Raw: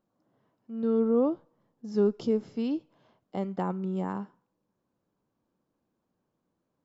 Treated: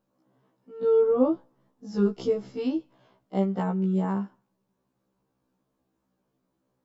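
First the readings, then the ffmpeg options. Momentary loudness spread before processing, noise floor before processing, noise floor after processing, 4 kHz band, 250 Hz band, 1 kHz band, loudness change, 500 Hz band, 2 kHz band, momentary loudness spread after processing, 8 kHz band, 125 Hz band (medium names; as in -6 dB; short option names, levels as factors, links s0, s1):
15 LU, -81 dBFS, -78 dBFS, +3.0 dB, +2.0 dB, +2.5 dB, +3.0 dB, +4.0 dB, +3.5 dB, 12 LU, no reading, +6.0 dB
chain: -af "afftfilt=real='re*1.73*eq(mod(b,3),0)':imag='im*1.73*eq(mod(b,3),0)':win_size=2048:overlap=0.75,volume=1.88"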